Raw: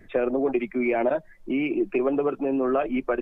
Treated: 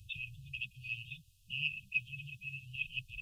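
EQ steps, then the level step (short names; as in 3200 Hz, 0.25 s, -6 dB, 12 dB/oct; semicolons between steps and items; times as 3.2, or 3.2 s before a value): HPF 72 Hz 12 dB/oct; elliptic band-stop 110–2200 Hz, stop band 40 dB; brick-wall FIR band-stop 230–2500 Hz; +7.0 dB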